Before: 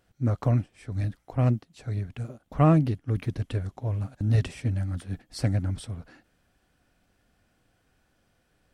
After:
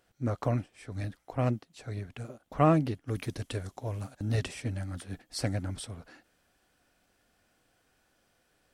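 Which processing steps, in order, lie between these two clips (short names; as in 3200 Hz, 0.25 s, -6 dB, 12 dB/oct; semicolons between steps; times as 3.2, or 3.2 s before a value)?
tone controls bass -8 dB, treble +1 dB, from 3.06 s treble +9 dB, from 4.12 s treble +3 dB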